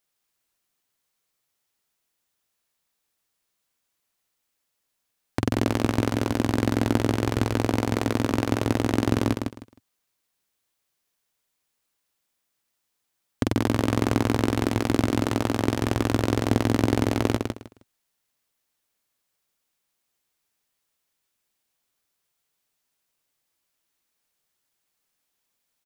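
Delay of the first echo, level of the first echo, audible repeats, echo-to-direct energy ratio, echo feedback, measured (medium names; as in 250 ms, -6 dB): 156 ms, -5.0 dB, 3, -5.0 dB, 21%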